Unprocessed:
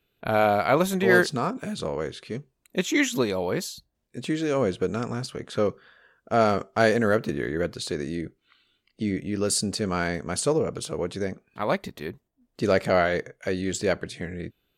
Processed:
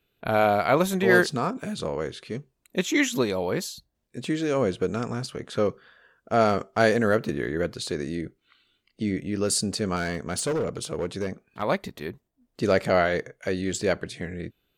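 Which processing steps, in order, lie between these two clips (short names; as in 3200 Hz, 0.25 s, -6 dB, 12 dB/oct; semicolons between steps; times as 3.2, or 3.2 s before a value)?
9.96–11.62 hard clip -22.5 dBFS, distortion -21 dB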